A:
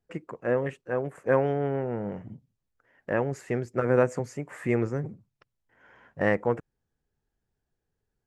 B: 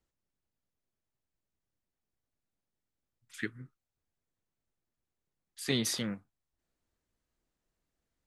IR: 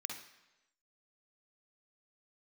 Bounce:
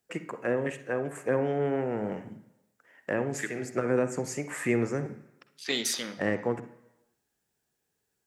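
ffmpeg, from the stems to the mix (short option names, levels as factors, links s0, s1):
-filter_complex "[0:a]highpass=f=180:p=1,highshelf=f=3400:g=8,acrossover=split=390[s0][s1];[s1]acompressor=threshold=0.0224:ratio=6[s2];[s0][s2]amix=inputs=2:normalize=0,volume=1.12,asplit=2[s3][s4];[s4]volume=0.708[s5];[1:a]highpass=330,afwtdn=0.00447,volume=1.12,asplit=3[s6][s7][s8];[s7]volume=0.631[s9];[s8]apad=whole_len=364595[s10];[s3][s10]sidechaincompress=threshold=0.00447:ratio=8:attack=7.3:release=177[s11];[2:a]atrim=start_sample=2205[s12];[s5][s9]amix=inputs=2:normalize=0[s13];[s13][s12]afir=irnorm=-1:irlink=0[s14];[s11][s6][s14]amix=inputs=3:normalize=0"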